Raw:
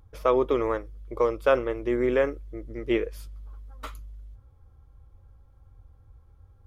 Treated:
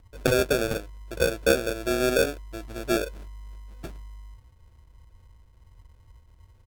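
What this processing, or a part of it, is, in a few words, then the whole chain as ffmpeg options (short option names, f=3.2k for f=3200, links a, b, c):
crushed at another speed: -af "asetrate=55125,aresample=44100,acrusher=samples=35:mix=1:aa=0.000001,asetrate=35280,aresample=44100"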